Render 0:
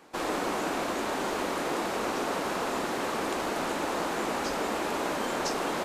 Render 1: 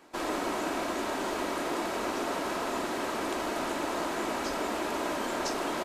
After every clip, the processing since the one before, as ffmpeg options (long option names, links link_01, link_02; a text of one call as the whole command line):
ffmpeg -i in.wav -af "aecho=1:1:3.1:0.3,volume=-2dB" out.wav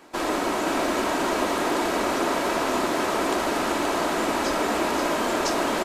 ffmpeg -i in.wav -af "aecho=1:1:526:0.596,volume=6.5dB" out.wav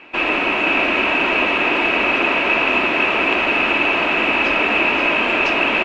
ffmpeg -i in.wav -af "lowpass=frequency=2600:width_type=q:width=13,volume=2.5dB" out.wav